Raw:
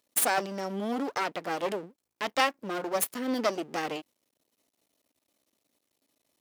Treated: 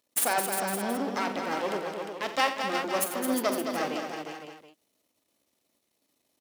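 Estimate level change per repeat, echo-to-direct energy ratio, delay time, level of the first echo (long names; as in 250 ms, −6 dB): repeats not evenly spaced, −1.5 dB, 43 ms, −11.5 dB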